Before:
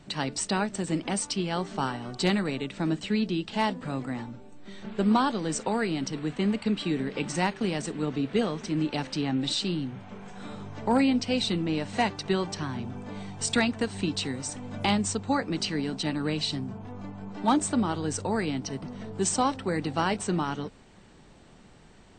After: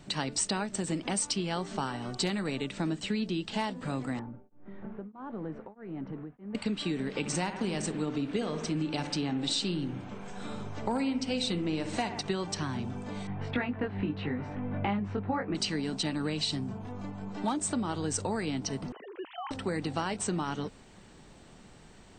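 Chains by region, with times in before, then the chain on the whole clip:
4.19–6.55 Bessel low-pass 1200 Hz, order 4 + compressor 2.5:1, threshold -36 dBFS + beating tremolo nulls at 1.6 Hz
7.19–12.21 notch 1900 Hz, Q 29 + analogue delay 63 ms, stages 1024, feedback 65%, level -11 dB
13.27–15.55 LPF 2300 Hz 24 dB/oct + doubler 20 ms -3 dB
18.92–19.51 sine-wave speech + HPF 560 Hz 6 dB/oct + compressor, threshold -36 dBFS
whole clip: compressor 5:1, threshold -28 dBFS; high shelf 7400 Hz +6.5 dB

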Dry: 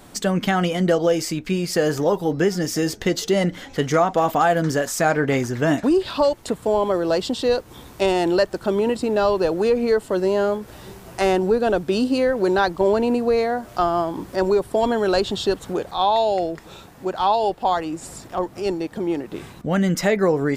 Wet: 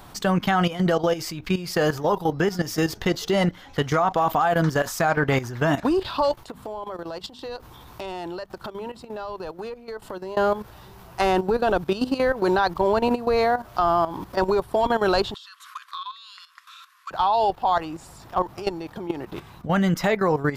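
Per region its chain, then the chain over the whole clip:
6.39–10.37 notches 50/100/150/200/250 Hz + compressor 4:1, threshold -32 dBFS
15.34–17.11 brick-wall FIR band-pass 1000–13000 Hz + compressor, threshold -34 dBFS
whole clip: graphic EQ 250/500/1000/2000/8000 Hz -7/-6/+4/-4/-9 dB; level quantiser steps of 13 dB; gain +6.5 dB

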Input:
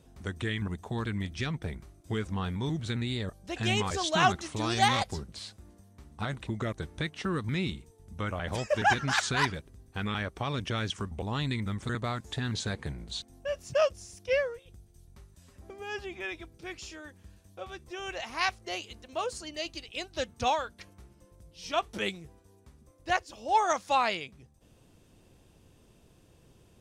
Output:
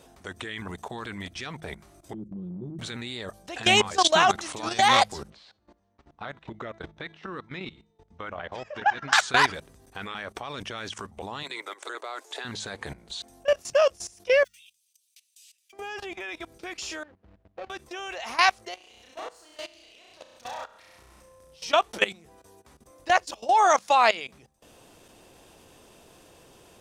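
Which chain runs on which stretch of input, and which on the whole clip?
2.13–2.79 inverse Chebyshev low-pass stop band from 680 Hz + comb 5.7 ms, depth 82% + compressor 10:1, threshold -31 dBFS
5.3–9.13 de-hum 331.5 Hz, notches 37 + chopper 2.6 Hz, depth 65%, duty 10% + air absorption 170 m
11.43–12.45 steep high-pass 330 Hz 48 dB/oct + notch 1800 Hz, Q 18
14.44–15.73 block floating point 7-bit + elliptic high-pass 2600 Hz, stop band 80 dB
17.03–17.7 median filter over 41 samples + LPF 3700 Hz
18.74–21.63 compressor 5:1, threshold -47 dBFS + tube stage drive 42 dB, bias 0.7 + flutter echo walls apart 5.6 m, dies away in 0.89 s
whole clip: EQ curve 120 Hz 0 dB, 730 Hz +15 dB, 2100 Hz +13 dB; level quantiser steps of 18 dB; de-hum 52.38 Hz, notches 4

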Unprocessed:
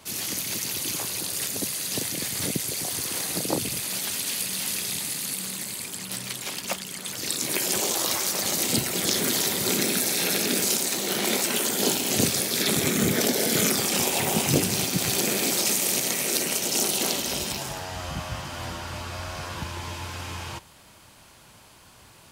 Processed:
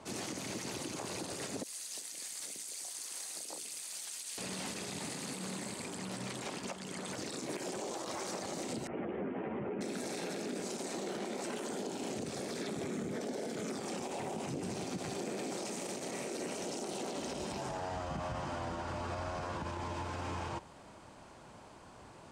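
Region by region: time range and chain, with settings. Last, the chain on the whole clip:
1.63–4.38 differentiator + notches 60/120/180/240/300/360/420/480 Hz
8.87–9.81 steep low-pass 2900 Hz 72 dB/oct + high shelf 2200 Hz -10 dB + ensemble effect
whole clip: EQ curve 110 Hz 0 dB, 280 Hz +6 dB, 760 Hz +6 dB, 3300 Hz -7 dB, 8400 Hz -6 dB, 13000 Hz -25 dB; compressor 5:1, threshold -28 dBFS; limiter -27 dBFS; gain -3.5 dB

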